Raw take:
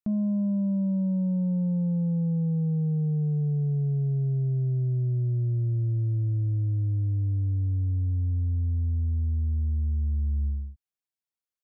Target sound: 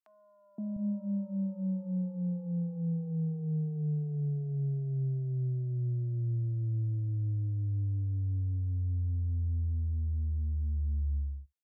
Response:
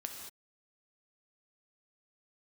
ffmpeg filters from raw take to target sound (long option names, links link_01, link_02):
-filter_complex "[0:a]acrossover=split=200|800[link_01][link_02][link_03];[link_02]adelay=520[link_04];[link_01]adelay=700[link_05];[link_05][link_04][link_03]amix=inputs=3:normalize=0,asplit=2[link_06][link_07];[1:a]atrim=start_sample=2205,atrim=end_sample=3528[link_08];[link_07][link_08]afir=irnorm=-1:irlink=0,volume=-12dB[link_09];[link_06][link_09]amix=inputs=2:normalize=0,volume=-6.5dB"